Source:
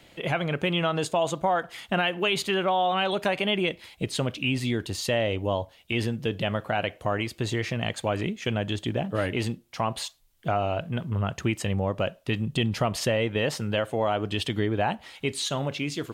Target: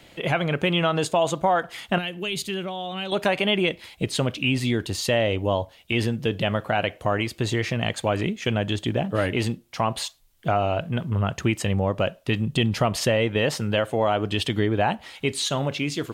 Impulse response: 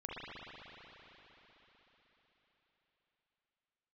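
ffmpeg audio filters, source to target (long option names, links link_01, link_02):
-filter_complex "[0:a]asettb=1/sr,asplit=3[link_01][link_02][link_03];[link_01]atrim=end=1.984[link_04];[link_02]atrim=start=1.98:end=3.12,asetpts=PTS-STARTPTS,afade=type=in:duration=0.004:curve=qsin,afade=type=out:start_time=1.136:duration=0.004:curve=qsin,equalizer=frequency=980:width=0.42:gain=-14.5[link_05];[link_03]atrim=start=3.116[link_06];[link_04][link_05]acrossfade=duration=0.004:curve1=hsin:curve2=qsin[link_07];[link_07][link_06]acrossfade=duration=0.004:curve1=qsin:curve2=hsin,volume=3.5dB"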